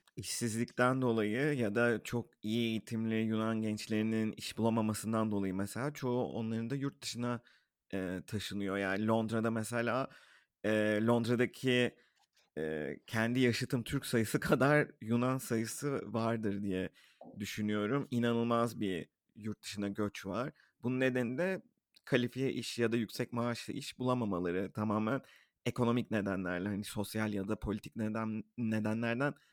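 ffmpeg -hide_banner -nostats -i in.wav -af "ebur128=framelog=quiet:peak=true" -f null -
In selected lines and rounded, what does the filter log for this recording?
Integrated loudness:
  I:         -35.1 LUFS
  Threshold: -45.3 LUFS
Loudness range:
  LRA:         3.6 LU
  Threshold: -55.3 LUFS
  LRA low:   -37.0 LUFS
  LRA high:  -33.4 LUFS
True peak:
  Peak:      -14.4 dBFS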